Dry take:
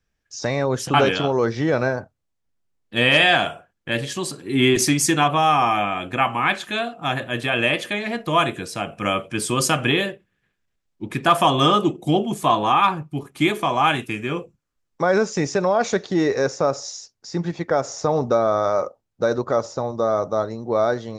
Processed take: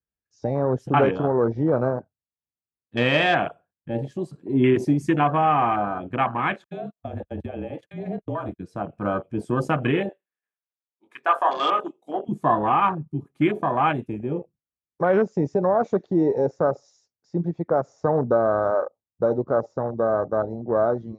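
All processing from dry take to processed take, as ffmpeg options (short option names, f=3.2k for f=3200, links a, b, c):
-filter_complex "[0:a]asettb=1/sr,asplit=3[a][b][c];[a]atrim=end=6.644[d];[b]atrim=start=6.64:end=8.6,asetpts=PTS-STARTPTS,afade=t=in:d=0.004:c=qsin,afade=t=out:st=1.956:d=0.004:c=qsin,agate=range=-41dB:threshold=-30dB:ratio=16:release=100:detection=peak,acompressor=threshold=-22dB:ratio=8:attack=3.2:release=140:knee=1:detection=peak,afreqshift=-31[e];[c]atrim=start=8.596[f];[d][e]acrossfade=d=0.004:c1=hsin:c2=qsin[g];[g][f]acrossfade=d=0.004:c1=qsin:c2=hsin,asettb=1/sr,asplit=3[h][i][j];[h]atrim=end=10.094[k];[i]atrim=start=10.09:end=12.29,asetpts=PTS-STARTPTS,afade=t=in:d=0.004:c=qsin,afade=t=out:st=2.196:d=0.004:c=qsin,highpass=680,asplit=2[l][m];[m]adelay=21,volume=-7dB[n];[l][n]amix=inputs=2:normalize=0,atrim=end_sample=97020[o];[j]atrim=start=12.286[p];[k][o]acrossfade=d=0.004:c1=hsin:c2=qsin[q];[q][p]acrossfade=d=0.004:c1=qsin:c2=hsin,afwtdn=0.0708,highpass=51,highshelf=f=2.1k:g=-12"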